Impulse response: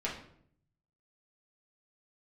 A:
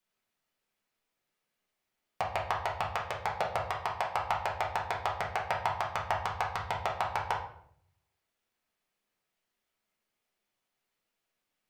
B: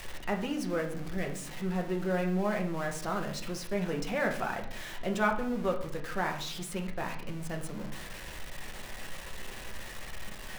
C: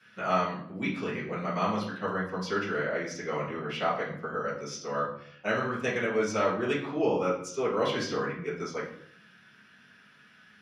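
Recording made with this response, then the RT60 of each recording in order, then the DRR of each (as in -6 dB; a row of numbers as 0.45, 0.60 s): A; 0.65, 0.65, 0.65 s; -5.5, 1.5, -12.0 dB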